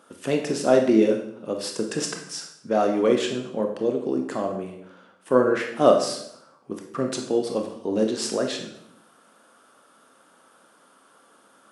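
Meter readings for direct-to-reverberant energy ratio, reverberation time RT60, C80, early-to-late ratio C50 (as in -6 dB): 3.0 dB, 0.75 s, 9.5 dB, 6.5 dB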